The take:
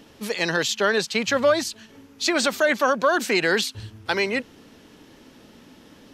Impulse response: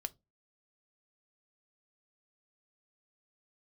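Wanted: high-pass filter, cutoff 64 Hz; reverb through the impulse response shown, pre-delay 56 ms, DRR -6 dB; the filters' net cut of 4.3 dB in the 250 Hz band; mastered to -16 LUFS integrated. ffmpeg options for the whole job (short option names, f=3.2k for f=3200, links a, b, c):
-filter_complex "[0:a]highpass=64,equalizer=f=250:t=o:g=-6,asplit=2[a][b];[1:a]atrim=start_sample=2205,adelay=56[c];[b][c]afir=irnorm=-1:irlink=0,volume=8dB[d];[a][d]amix=inputs=2:normalize=0"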